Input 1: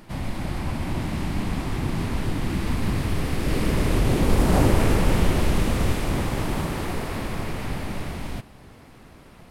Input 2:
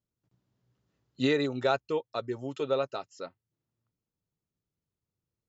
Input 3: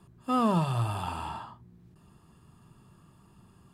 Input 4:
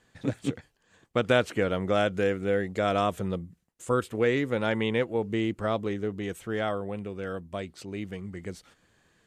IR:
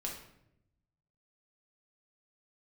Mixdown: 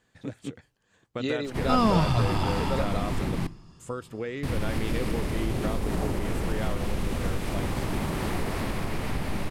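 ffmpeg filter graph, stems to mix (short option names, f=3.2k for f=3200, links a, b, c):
-filter_complex "[0:a]acompressor=threshold=-25dB:ratio=12,adelay=1450,volume=0dB,asplit=3[a][b][c];[a]atrim=end=3.47,asetpts=PTS-STARTPTS,afade=t=out:st=3.466:d=0.004:c=hsin[d];[b]atrim=start=3.47:end=4.43,asetpts=PTS-STARTPTS,volume=0[e];[c]atrim=start=4.43,asetpts=PTS-STARTPTS,afade=t=in:d=0.004:c=hsin[f];[d][e][f]concat=n=3:v=0:a=1,asplit=2[g][h];[h]volume=-15.5dB[i];[1:a]volume=-4dB[j];[2:a]lowpass=f=5.5k:t=q:w=4.9,adelay=1400,volume=2.5dB[k];[3:a]acompressor=threshold=-26dB:ratio=6,volume=-4dB[l];[4:a]atrim=start_sample=2205[m];[i][m]afir=irnorm=-1:irlink=0[n];[g][j][k][l][n]amix=inputs=5:normalize=0"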